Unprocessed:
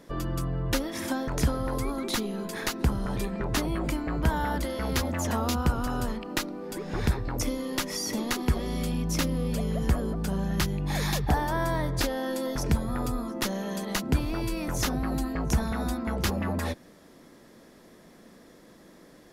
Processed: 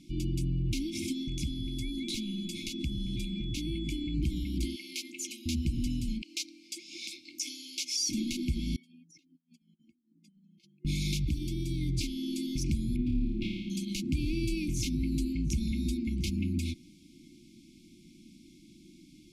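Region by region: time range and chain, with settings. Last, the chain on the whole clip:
1.12–4.13 s: compression 3:1, threshold -30 dBFS + whistle 3.4 kHz -45 dBFS
4.76–5.46 s: high-pass 410 Hz 24 dB/octave + band-stop 3.6 kHz, Q 28
6.22–8.09 s: high-pass 450 Hz 24 dB/octave + peaking EQ 5.7 kHz +7 dB 1.1 oct
8.76–10.85 s: spectral contrast enhancement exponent 2.2 + high-pass 520 Hz 24 dB/octave + compressor with a negative ratio -56 dBFS
12.96–13.70 s: distance through air 430 m + flutter echo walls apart 4.8 m, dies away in 0.99 s
whole clip: peak limiter -21 dBFS; FFT band-reject 360–2100 Hz; low-pass 9.1 kHz 12 dB/octave

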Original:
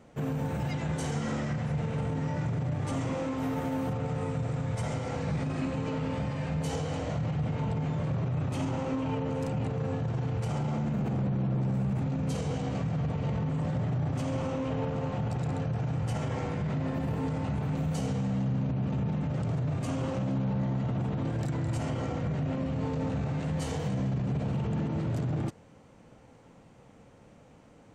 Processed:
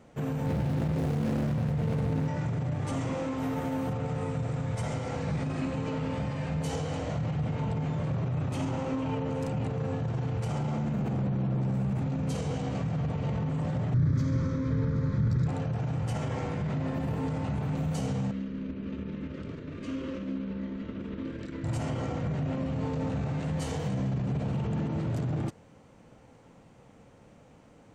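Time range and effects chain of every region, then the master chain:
0.46–2.28 s: median filter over 41 samples + level flattener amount 100%
13.94–15.47 s: bass shelf 210 Hz +8.5 dB + static phaser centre 2.8 kHz, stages 6
18.31–21.64 s: low-pass 3.8 kHz + static phaser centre 320 Hz, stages 4 + doubling 26 ms -13 dB
whole clip: none

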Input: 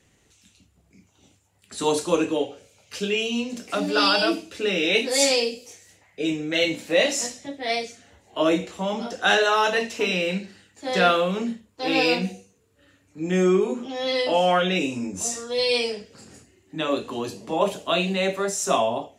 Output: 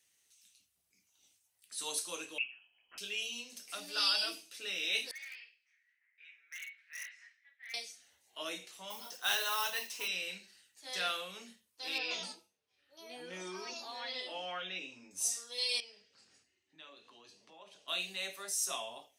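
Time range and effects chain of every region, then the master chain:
2.38–2.98 s: dynamic bell 1.8 kHz, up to +7 dB, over -57 dBFS, Q 3 + frequency inversion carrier 3.1 kHz
5.11–7.74 s: Butterworth band-pass 1.8 kHz, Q 2.4 + hard clipper -29 dBFS
8.90–10.08 s: peaking EQ 1 kHz +9.5 dB 0.32 oct + modulation noise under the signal 24 dB
11.98–15.11 s: distance through air 200 m + ever faster or slower copies 125 ms, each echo +5 st, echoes 2, each echo -6 dB
15.80–17.88 s: compression 2:1, threshold -39 dBFS + distance through air 130 m
whole clip: pre-emphasis filter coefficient 0.97; band-stop 7.2 kHz, Q 5.6; trim -2.5 dB

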